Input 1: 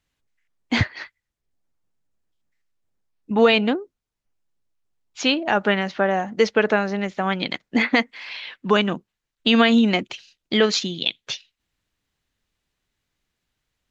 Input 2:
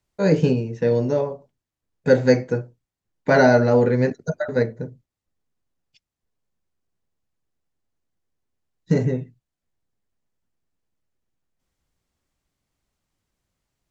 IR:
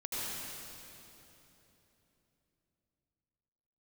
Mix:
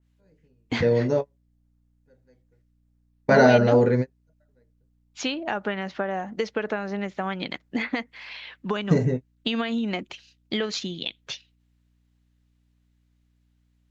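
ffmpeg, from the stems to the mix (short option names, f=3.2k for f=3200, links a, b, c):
-filter_complex "[0:a]acompressor=threshold=-19dB:ratio=12,aeval=exprs='val(0)+0.000891*(sin(2*PI*60*n/s)+sin(2*PI*2*60*n/s)/2+sin(2*PI*3*60*n/s)/3+sin(2*PI*4*60*n/s)/4+sin(2*PI*5*60*n/s)/5)':c=same,adynamicequalizer=threshold=0.0126:dfrequency=2300:dqfactor=0.7:tfrequency=2300:tqfactor=0.7:attack=5:release=100:ratio=0.375:range=2.5:mode=cutabove:tftype=highshelf,volume=-3.5dB,asplit=2[a][b];[1:a]volume=-1.5dB[c];[b]apad=whole_len=613410[d];[c][d]sidechaingate=range=-44dB:threshold=-57dB:ratio=16:detection=peak[e];[a][e]amix=inputs=2:normalize=0"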